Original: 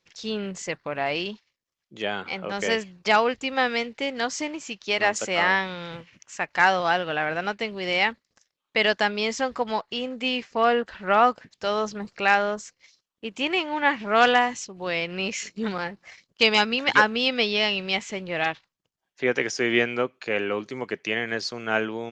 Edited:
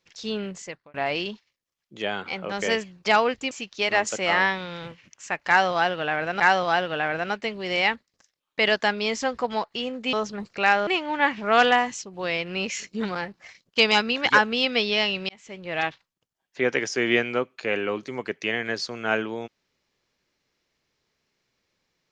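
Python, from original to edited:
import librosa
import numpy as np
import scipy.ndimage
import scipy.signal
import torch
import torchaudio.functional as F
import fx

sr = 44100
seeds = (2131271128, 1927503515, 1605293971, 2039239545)

y = fx.edit(x, sr, fx.fade_out_span(start_s=0.41, length_s=0.53),
    fx.cut(start_s=3.51, length_s=1.09),
    fx.repeat(start_s=6.57, length_s=0.92, count=2),
    fx.cut(start_s=10.3, length_s=1.45),
    fx.cut(start_s=12.49, length_s=1.01),
    fx.fade_in_span(start_s=17.92, length_s=0.57), tone=tone)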